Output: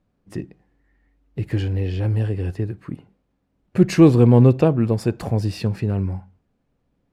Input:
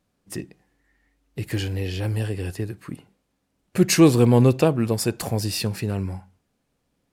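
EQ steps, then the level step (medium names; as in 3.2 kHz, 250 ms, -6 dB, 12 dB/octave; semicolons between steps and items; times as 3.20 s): low-pass 2.9 kHz 6 dB/octave; tilt EQ -1.5 dB/octave; 0.0 dB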